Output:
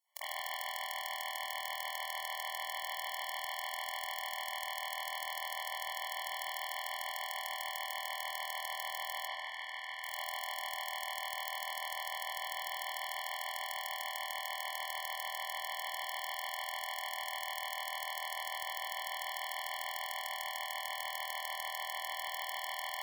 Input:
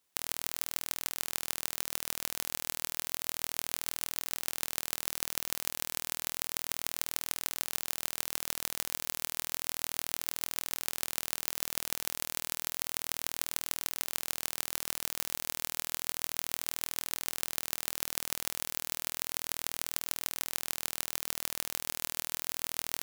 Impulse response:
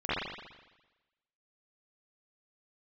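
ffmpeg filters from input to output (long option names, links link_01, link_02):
-filter_complex "[0:a]asettb=1/sr,asplit=3[link_01][link_02][link_03];[link_01]atrim=end=9.274[link_04];[link_02]atrim=start=9.27:end=10.03,asetpts=PTS-STARTPTS,afade=type=in:duration=0.004:curve=qsin,afade=type=out:start_time=0.756:duration=0.004:curve=qsin,bandpass=frequency=1900:width_type=q:width=1:csg=0[link_05];[link_03]atrim=start=10.026[link_06];[link_04][link_05]acrossfade=duration=0.004:curve1=hsin:curve2=qsin[link_07];[link_07][link_06]acrossfade=duration=0.004:curve1=qsin:curve2=hsin[link_08];[1:a]atrim=start_sample=2205,asetrate=40131,aresample=44100[link_09];[link_08][link_09]afir=irnorm=-1:irlink=0,afftfilt=real='re*eq(mod(floor(b*sr/1024/580),2),1)':imag='im*eq(mod(floor(b*sr/1024/580),2),1)':win_size=1024:overlap=0.75,volume=-3.5dB"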